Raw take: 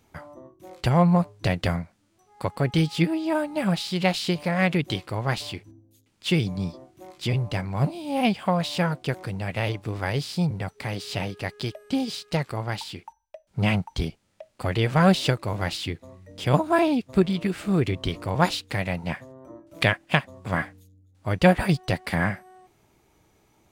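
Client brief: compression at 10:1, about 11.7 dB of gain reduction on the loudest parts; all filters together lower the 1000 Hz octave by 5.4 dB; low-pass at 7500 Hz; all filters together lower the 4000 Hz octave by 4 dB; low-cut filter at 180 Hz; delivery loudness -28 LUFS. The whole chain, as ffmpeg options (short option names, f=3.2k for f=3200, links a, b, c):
-af "highpass=180,lowpass=7.5k,equalizer=f=1k:t=o:g=-7.5,equalizer=f=4k:t=o:g=-4.5,acompressor=threshold=-26dB:ratio=10,volume=5.5dB"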